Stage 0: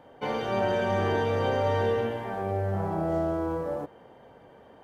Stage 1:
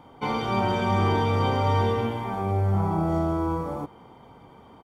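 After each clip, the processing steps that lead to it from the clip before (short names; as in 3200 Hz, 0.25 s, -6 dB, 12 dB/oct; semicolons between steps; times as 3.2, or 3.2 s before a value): bell 1800 Hz -4 dB 0.57 oct; comb 0.9 ms, depth 60%; gain +3.5 dB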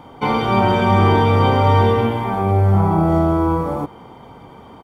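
dynamic EQ 6200 Hz, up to -7 dB, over -54 dBFS, Q 1.2; gain +9 dB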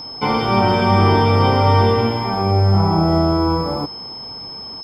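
whine 5200 Hz -30 dBFS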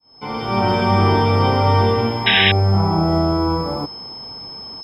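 opening faded in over 0.70 s; painted sound noise, 2.26–2.52, 1500–3900 Hz -13 dBFS; gain -1.5 dB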